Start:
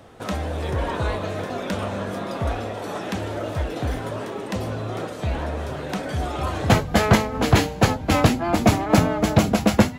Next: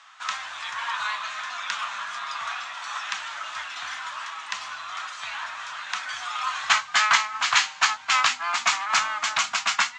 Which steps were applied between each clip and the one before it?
short-mantissa float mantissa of 4-bit; elliptic band-pass 1.1–7.1 kHz, stop band 40 dB; trim +5.5 dB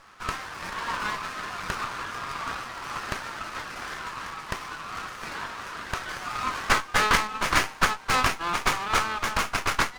sliding maximum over 9 samples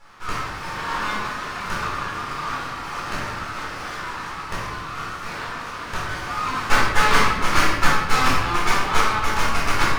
simulated room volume 480 m³, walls mixed, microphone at 4.2 m; trim -5.5 dB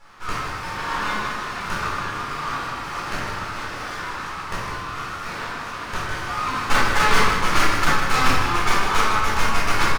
overload inside the chain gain 9.5 dB; delay 155 ms -8 dB

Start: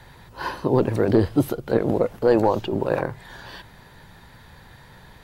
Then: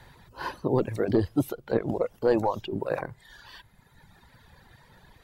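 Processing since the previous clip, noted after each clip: reverb removal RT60 1.6 s; trim -4.5 dB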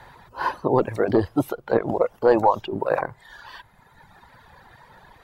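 peaking EQ 950 Hz +10.5 dB 2.2 oct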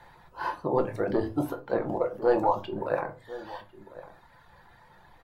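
echo from a far wall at 180 m, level -16 dB; simulated room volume 120 m³, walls furnished, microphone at 0.8 m; trim -8 dB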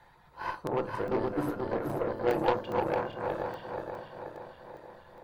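backward echo that repeats 240 ms, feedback 75%, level -3 dB; Chebyshev shaper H 4 -12 dB, 6 -13 dB, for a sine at -9 dBFS; crackling interface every 0.41 s, samples 64, zero, from 0.67 s; trim -5.5 dB

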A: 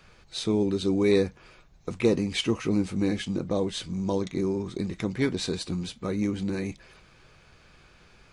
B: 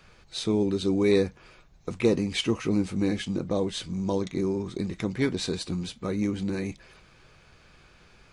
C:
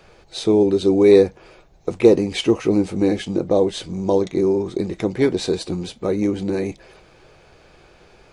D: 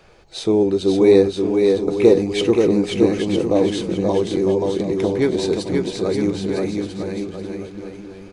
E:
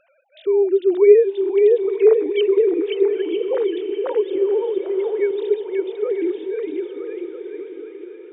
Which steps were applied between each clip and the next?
no audible change
high-order bell 520 Hz +8 dB; trim +3.5 dB
bouncing-ball echo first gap 530 ms, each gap 0.8×, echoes 5; trim -1 dB
formants replaced by sine waves; echo that smears into a reverb 994 ms, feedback 41%, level -10.5 dB; trim -1 dB

